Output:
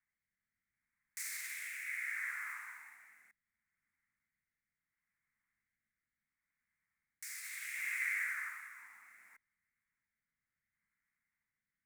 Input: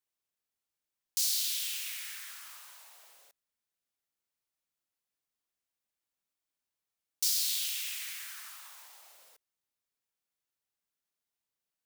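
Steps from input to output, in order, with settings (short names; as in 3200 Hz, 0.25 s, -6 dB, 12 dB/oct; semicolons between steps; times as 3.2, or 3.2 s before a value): limiter -22.5 dBFS, peak gain reduction 5.5 dB; EQ curve 220 Hz 0 dB, 550 Hz -29 dB, 850 Hz -10 dB, 2100 Hz +9 dB, 3000 Hz -26 dB, 4400 Hz -26 dB, 8100 Hz -14 dB, 16000 Hz -20 dB; rotary speaker horn 0.7 Hz; 8.2–8.79 low shelf 200 Hz -11.5 dB; gain +9 dB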